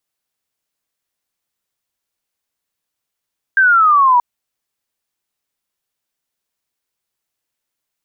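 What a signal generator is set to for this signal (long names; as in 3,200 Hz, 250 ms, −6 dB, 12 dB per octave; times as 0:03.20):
single falling chirp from 1,600 Hz, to 950 Hz, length 0.63 s sine, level −7.5 dB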